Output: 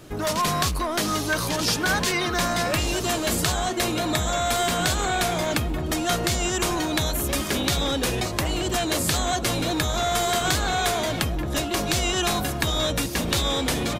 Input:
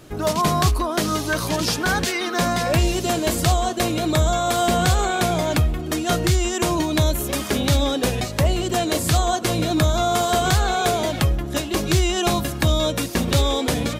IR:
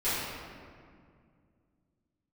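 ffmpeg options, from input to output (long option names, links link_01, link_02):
-filter_complex "[0:a]acrossover=split=1200[link_01][link_02];[link_01]asoftclip=type=hard:threshold=-25dB[link_03];[link_03][link_02]amix=inputs=2:normalize=0,asplit=2[link_04][link_05];[link_05]adelay=1633,volume=-7dB,highshelf=frequency=4000:gain=-36.7[link_06];[link_04][link_06]amix=inputs=2:normalize=0"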